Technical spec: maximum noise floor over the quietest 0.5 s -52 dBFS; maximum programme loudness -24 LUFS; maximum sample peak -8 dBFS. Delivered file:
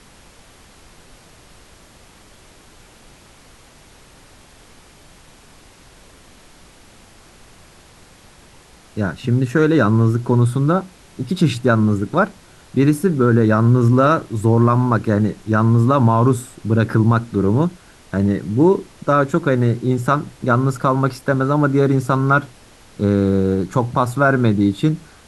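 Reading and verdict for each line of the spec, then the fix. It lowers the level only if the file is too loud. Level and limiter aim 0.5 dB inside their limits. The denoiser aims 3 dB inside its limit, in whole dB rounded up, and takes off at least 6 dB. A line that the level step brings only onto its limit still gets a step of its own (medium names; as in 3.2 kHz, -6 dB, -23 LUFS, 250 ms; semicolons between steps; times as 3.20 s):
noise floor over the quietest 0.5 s -46 dBFS: fail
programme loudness -17.0 LUFS: fail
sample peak -3.0 dBFS: fail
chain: trim -7.5 dB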